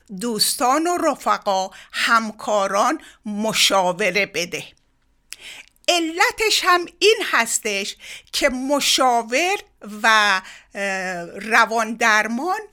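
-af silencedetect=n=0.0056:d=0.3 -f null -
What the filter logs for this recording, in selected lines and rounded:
silence_start: 4.78
silence_end: 5.31 | silence_duration: 0.53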